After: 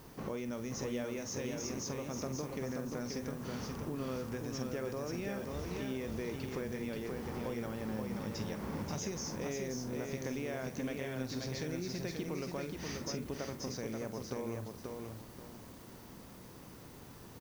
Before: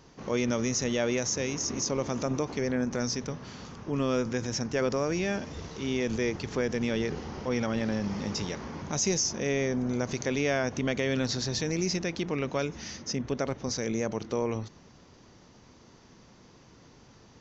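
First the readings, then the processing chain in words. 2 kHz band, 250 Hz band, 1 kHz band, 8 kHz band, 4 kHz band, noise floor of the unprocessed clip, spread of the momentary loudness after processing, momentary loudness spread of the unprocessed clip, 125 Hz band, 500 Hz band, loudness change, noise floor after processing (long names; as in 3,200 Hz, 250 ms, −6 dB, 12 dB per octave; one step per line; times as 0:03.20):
−11.0 dB, −8.5 dB, −8.5 dB, can't be measured, −11.5 dB, −56 dBFS, 12 LU, 7 LU, −7.5 dB, −9.5 dB, −9.5 dB, −52 dBFS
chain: high-shelf EQ 2,900 Hz −7.5 dB
downward compressor 6 to 1, threshold −40 dBFS, peak gain reduction 15 dB
background noise blue −65 dBFS
double-tracking delay 46 ms −11.5 dB
feedback echo at a low word length 532 ms, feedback 35%, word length 10 bits, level −3.5 dB
level +2 dB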